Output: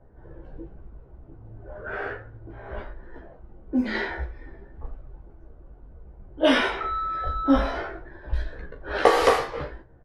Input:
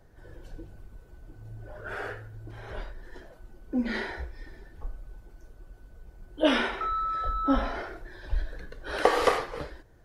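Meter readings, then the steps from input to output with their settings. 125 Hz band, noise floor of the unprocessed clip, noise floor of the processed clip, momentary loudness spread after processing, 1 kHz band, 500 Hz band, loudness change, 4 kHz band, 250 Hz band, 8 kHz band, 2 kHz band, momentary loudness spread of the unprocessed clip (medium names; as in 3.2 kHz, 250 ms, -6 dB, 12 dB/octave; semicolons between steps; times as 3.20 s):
+3.5 dB, -54 dBFS, -50 dBFS, 23 LU, +3.5 dB, +5.0 dB, +4.5 dB, +4.0 dB, +4.5 dB, +4.0 dB, +4.5 dB, 23 LU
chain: early reflections 15 ms -3 dB, 39 ms -10.5 dB; level-controlled noise filter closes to 990 Hz, open at -20.5 dBFS; trim +2.5 dB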